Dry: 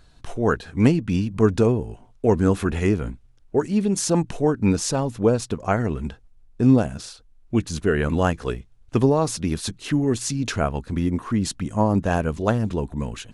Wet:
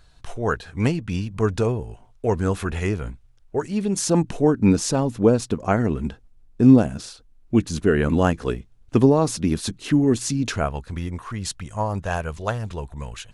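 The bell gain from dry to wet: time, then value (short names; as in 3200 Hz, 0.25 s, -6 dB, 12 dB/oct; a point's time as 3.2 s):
bell 260 Hz 1.4 oct
3.6 s -7 dB
4.26 s +4 dB
10.35 s +4 dB
10.78 s -8 dB
11.27 s -14.5 dB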